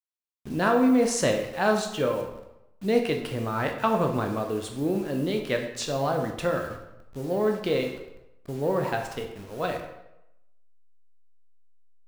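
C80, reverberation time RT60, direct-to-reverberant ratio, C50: 9.5 dB, 0.90 s, 3.0 dB, 7.0 dB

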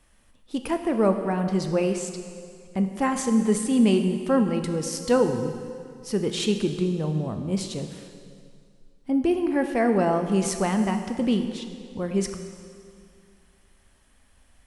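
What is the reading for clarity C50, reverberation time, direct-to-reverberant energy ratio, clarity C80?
7.5 dB, 2.2 s, 6.0 dB, 8.5 dB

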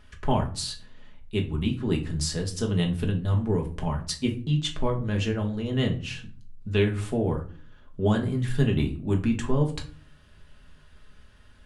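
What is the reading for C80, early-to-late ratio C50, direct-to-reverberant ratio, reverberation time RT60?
17.5 dB, 12.5 dB, 1.0 dB, 0.45 s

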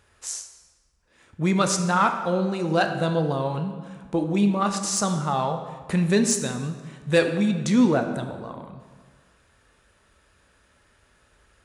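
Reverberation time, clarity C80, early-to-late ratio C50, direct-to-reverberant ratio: 1.6 s, 9.5 dB, 8.0 dB, 6.0 dB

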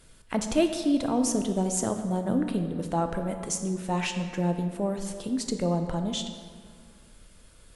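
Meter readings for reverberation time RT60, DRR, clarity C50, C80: 2.0 s, 6.0 dB, 7.5 dB, 9.0 dB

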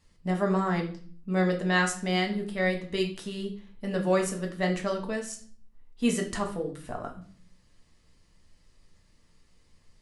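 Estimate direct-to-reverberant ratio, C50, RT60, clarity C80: 1.0 dB, 10.0 dB, 0.45 s, 14.5 dB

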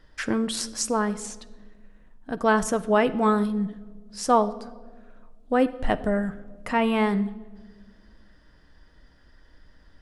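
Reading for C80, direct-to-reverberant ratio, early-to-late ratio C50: 18.5 dB, 9.5 dB, 16.5 dB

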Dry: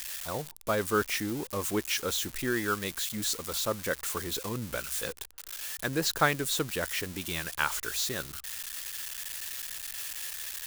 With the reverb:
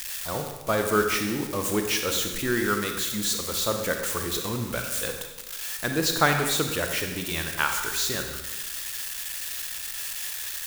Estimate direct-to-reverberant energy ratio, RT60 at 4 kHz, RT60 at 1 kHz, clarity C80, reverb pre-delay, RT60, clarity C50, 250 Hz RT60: 4.0 dB, 0.95 s, 1.1 s, 7.0 dB, 31 ms, 1.2 s, 5.0 dB, 1.2 s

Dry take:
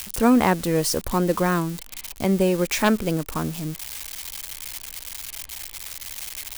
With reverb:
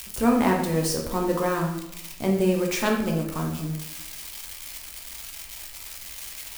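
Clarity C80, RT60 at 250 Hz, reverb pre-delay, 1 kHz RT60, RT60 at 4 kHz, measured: 8.5 dB, 1.0 s, 11 ms, 0.85 s, 0.60 s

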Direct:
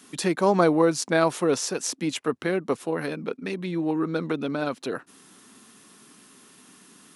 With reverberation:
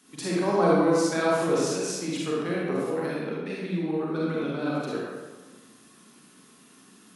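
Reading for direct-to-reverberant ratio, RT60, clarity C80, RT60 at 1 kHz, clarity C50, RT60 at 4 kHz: −6.0 dB, 1.3 s, −0.5 dB, 1.3 s, −3.5 dB, 0.85 s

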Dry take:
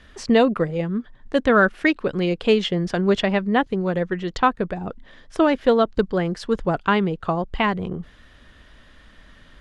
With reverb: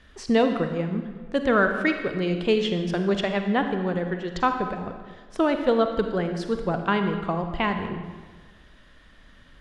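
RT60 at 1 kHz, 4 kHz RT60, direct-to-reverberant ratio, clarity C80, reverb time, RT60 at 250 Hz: 1.4 s, 1.1 s, 6.0 dB, 8.0 dB, 1.5 s, 1.5 s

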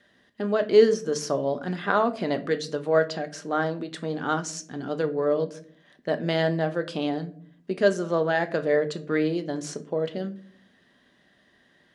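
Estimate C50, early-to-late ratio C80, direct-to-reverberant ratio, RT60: 16.5 dB, 21.0 dB, 8.0 dB, 0.55 s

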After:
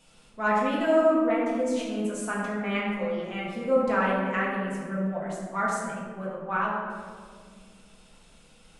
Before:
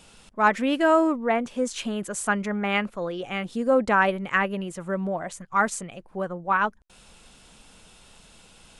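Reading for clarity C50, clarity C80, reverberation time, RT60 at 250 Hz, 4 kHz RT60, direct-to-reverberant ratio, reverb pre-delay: 0.0 dB, 2.0 dB, 2.0 s, 2.9 s, 0.95 s, −6.5 dB, 4 ms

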